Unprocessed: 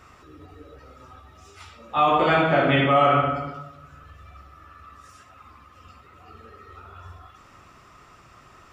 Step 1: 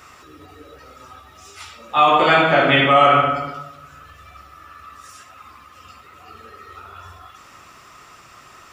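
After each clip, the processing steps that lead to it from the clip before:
spectral tilt +2 dB per octave
level +5.5 dB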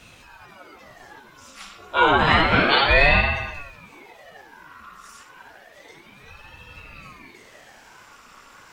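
ring modulator whose carrier an LFO sweeps 740 Hz, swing 85%, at 0.3 Hz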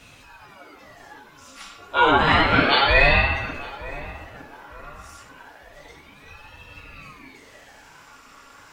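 feedback echo with a low-pass in the loop 909 ms, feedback 40%, low-pass 1,400 Hz, level −16 dB
on a send at −6 dB: convolution reverb RT60 0.30 s, pre-delay 4 ms
on the sum: level −1 dB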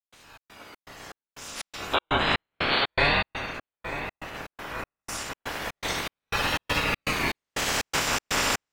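ceiling on every frequency bin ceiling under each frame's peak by 15 dB
camcorder AGC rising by 8.3 dB per second
gate pattern ".xx.xx.xx." 121 BPM −60 dB
level −6 dB

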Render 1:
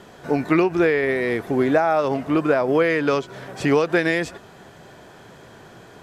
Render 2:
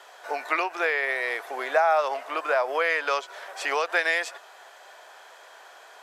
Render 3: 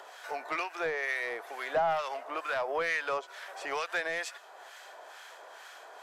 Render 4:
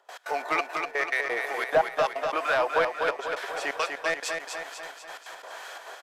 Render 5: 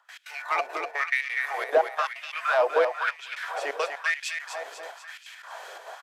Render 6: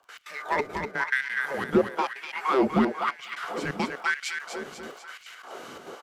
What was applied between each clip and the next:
high-pass filter 630 Hz 24 dB per octave
in parallel at −2.5 dB: upward compression, threshold −30 dBFS; on the sum: soft clipping −12.5 dBFS, distortion −15 dB; two-band tremolo in antiphase 2.2 Hz, depth 70%, crossover 1,200 Hz; level −7 dB
gate pattern ".x.xxxx.x..x" 174 BPM −24 dB; repeating echo 246 ms, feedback 56%, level −5 dB; level +7.5 dB
auto-filter high-pass sine 1 Hz 410–2,600 Hz; level −3 dB
frequency shifter −270 Hz; surface crackle 26 per second −45 dBFS

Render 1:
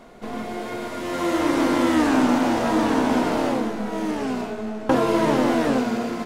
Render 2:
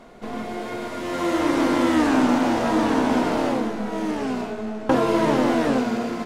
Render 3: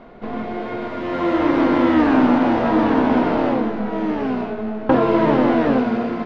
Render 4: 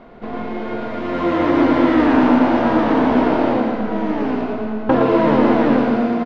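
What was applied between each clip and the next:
high-shelf EQ 11,000 Hz −5.5 dB
high-frequency loss of the air 300 metres; level +4.5 dB
repeating echo 114 ms, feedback 56%, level −5 dB

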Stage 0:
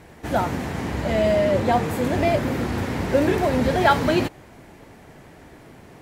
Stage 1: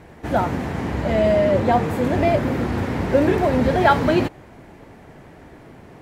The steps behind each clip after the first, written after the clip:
high-shelf EQ 3,300 Hz −8.5 dB
level +2.5 dB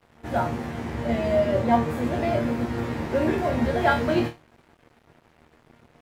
resonators tuned to a chord D#2 fifth, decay 0.28 s
dead-zone distortion −53.5 dBFS
level +5.5 dB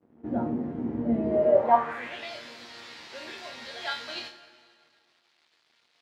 dense smooth reverb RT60 2.3 s, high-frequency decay 0.8×, DRR 11 dB
band-pass filter sweep 270 Hz → 4,300 Hz, 0:01.24–0:02.32
level +5.5 dB

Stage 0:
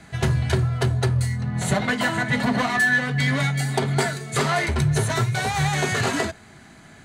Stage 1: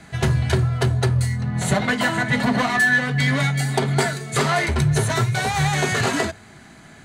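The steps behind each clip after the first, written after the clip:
mains-hum notches 50/100 Hz
level +2 dB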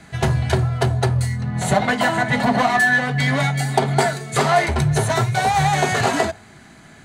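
dynamic equaliser 750 Hz, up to +8 dB, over −39 dBFS, Q 1.9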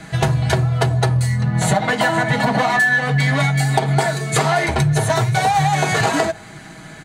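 comb filter 6.3 ms, depth 51%
downward compressor 4 to 1, threshold −21 dBFS, peak gain reduction 10 dB
level +6.5 dB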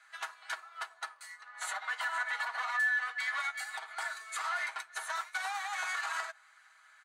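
four-pole ladder high-pass 1,100 Hz, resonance 55%
brickwall limiter −20.5 dBFS, peak gain reduction 7.5 dB
expander for the loud parts 1.5 to 1, over −46 dBFS
level −3 dB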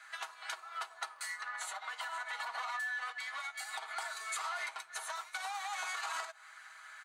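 dynamic equaliser 1,700 Hz, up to −7 dB, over −48 dBFS, Q 2.1
downward compressor 6 to 1, threshold −47 dBFS, peak gain reduction 12.5 dB
shaped tremolo saw up 0.64 Hz, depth 40%
level +11 dB

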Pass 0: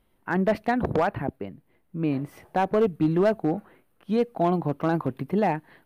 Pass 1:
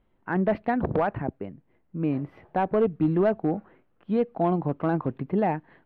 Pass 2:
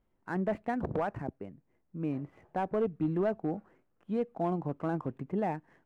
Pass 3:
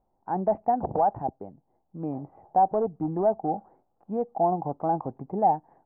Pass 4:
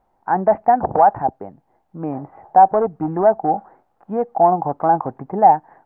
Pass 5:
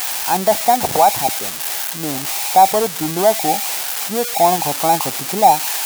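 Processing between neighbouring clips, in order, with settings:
high-frequency loss of the air 370 metres
running median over 9 samples; level −7.5 dB
low-pass with resonance 800 Hz, resonance Q 6.6
parametric band 1,700 Hz +15 dB 1.7 octaves; level +5 dB
spike at every zero crossing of −7.5 dBFS

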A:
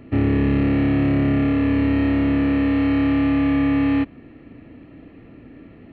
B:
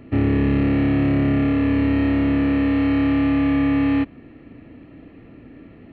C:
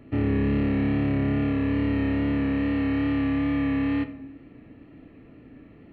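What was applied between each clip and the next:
no processing that can be heard
rectangular room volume 210 cubic metres, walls mixed, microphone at 0.34 metres; tape wow and flutter 26 cents; level −6 dB

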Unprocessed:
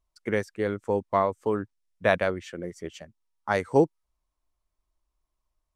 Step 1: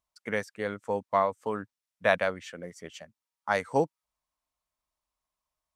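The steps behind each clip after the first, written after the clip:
high-pass filter 260 Hz 6 dB per octave
parametric band 360 Hz −11 dB 0.48 octaves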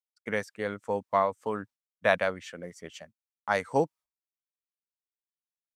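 downward expander −46 dBFS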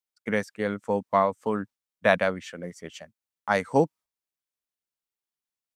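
dynamic equaliser 210 Hz, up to +6 dB, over −46 dBFS, Q 1.1
level +2.5 dB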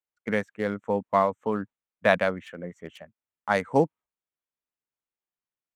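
adaptive Wiener filter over 9 samples

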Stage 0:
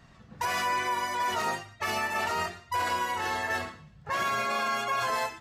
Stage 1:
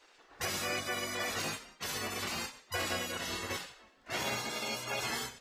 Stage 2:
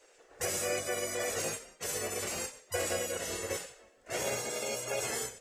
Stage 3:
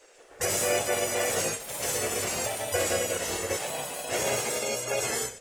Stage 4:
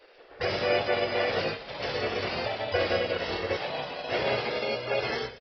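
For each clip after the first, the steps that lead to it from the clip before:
gate on every frequency bin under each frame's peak −15 dB weak; level +2 dB
graphic EQ with 10 bands 250 Hz −6 dB, 500 Hz +11 dB, 1,000 Hz −7 dB, 4,000 Hz −8 dB, 8,000 Hz +10 dB
delay with pitch and tempo change per echo 154 ms, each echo +3 semitones, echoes 2, each echo −6 dB; level +5.5 dB
downsampling to 11,025 Hz; level +1.5 dB

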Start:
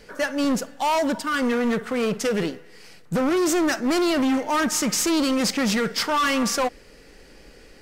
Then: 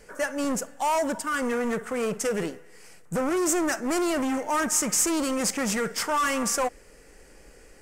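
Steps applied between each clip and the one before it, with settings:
octave-band graphic EQ 125/250/4,000/8,000 Hz −3/−4/−11/+8 dB
level −2 dB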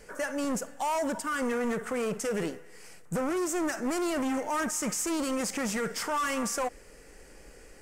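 brickwall limiter −24 dBFS, peak gain reduction 10 dB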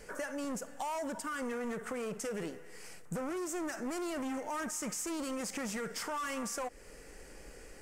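downward compressor 3 to 1, threshold −38 dBFS, peak gain reduction 8 dB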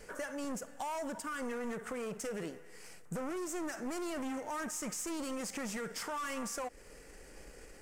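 gain on one half-wave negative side −3 dB

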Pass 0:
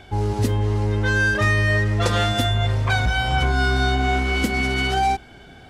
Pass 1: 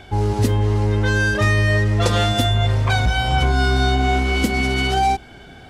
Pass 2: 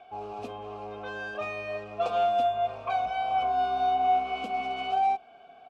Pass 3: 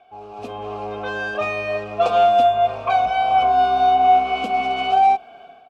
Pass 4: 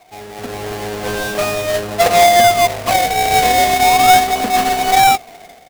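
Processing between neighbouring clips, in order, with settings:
dynamic equaliser 1,600 Hz, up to −4 dB, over −32 dBFS, Q 1.3; level +3 dB
formant filter a; comb filter 4.4 ms, depth 33%
automatic gain control gain up to 12 dB; level −1.5 dB
each half-wave held at its own peak; in parallel at −9 dB: sample-and-hold swept by an LFO 25×, swing 100% 0.38 Hz

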